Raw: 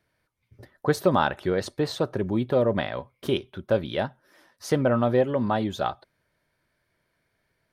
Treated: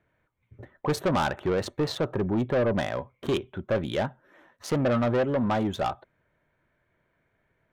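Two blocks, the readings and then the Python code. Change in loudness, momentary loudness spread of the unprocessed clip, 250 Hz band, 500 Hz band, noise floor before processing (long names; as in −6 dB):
−1.5 dB, 9 LU, −1.0 dB, −2.5 dB, −75 dBFS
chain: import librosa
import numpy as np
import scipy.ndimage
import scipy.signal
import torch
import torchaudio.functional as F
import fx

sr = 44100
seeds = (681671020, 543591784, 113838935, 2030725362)

y = fx.wiener(x, sr, points=9)
y = 10.0 ** (-23.0 / 20.0) * np.tanh(y / 10.0 ** (-23.0 / 20.0))
y = y * librosa.db_to_amplitude(3.0)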